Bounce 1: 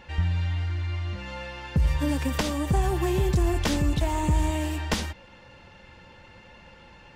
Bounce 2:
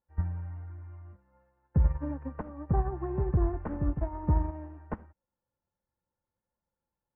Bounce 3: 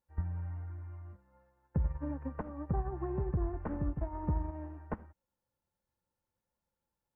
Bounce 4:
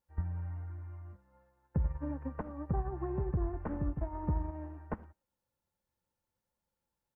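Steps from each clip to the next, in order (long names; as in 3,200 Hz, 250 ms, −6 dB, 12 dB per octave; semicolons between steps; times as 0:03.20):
inverse Chebyshev low-pass filter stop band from 3,600 Hz, stop band 50 dB; expander for the loud parts 2.5 to 1, over −44 dBFS
downward compressor 2 to 1, threshold −34 dBFS, peak gain reduction 8.5 dB
far-end echo of a speakerphone 110 ms, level −28 dB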